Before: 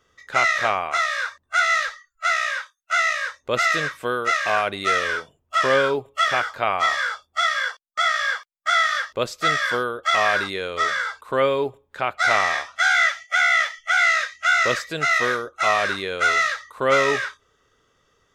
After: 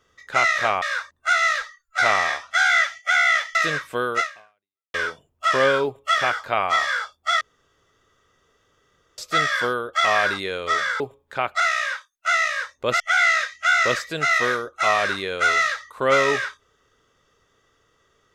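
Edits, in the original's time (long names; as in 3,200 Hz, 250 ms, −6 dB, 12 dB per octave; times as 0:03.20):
0:00.82–0:01.09: remove
0:02.25–0:03.65: swap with 0:12.23–0:13.80
0:04.30–0:05.04: fade out exponential
0:07.51–0:09.28: fill with room tone
0:11.10–0:11.63: remove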